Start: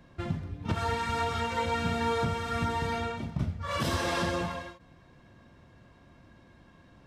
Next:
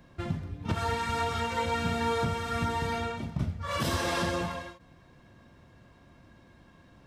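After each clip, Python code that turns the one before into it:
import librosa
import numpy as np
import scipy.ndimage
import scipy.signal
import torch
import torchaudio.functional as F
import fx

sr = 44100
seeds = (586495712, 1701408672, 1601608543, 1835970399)

y = fx.high_shelf(x, sr, hz=8900.0, db=5.0)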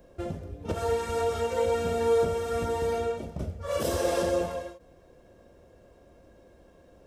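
y = fx.graphic_eq(x, sr, hz=(125, 250, 500, 1000, 2000, 4000), db=(-12, -6, 10, -9, -8, -8))
y = F.gain(torch.from_numpy(y), 4.0).numpy()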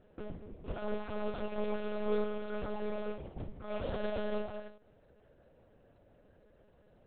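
y = fx.lpc_monotone(x, sr, seeds[0], pitch_hz=210.0, order=8)
y = F.gain(torch.from_numpy(y), -8.0).numpy()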